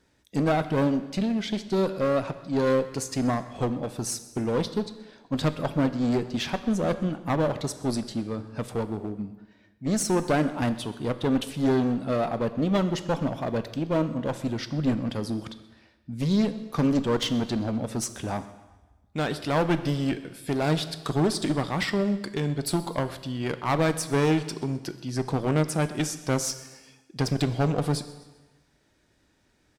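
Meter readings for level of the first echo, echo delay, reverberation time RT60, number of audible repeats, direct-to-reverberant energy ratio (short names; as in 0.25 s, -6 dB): -21.0 dB, 0.129 s, 1.2 s, 3, 11.0 dB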